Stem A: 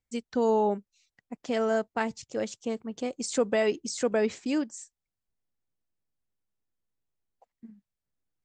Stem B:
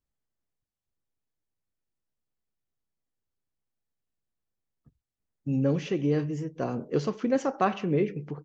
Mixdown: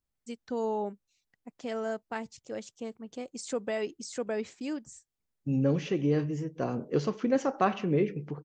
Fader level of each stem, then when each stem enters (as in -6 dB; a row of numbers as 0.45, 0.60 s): -7.0, -1.0 dB; 0.15, 0.00 s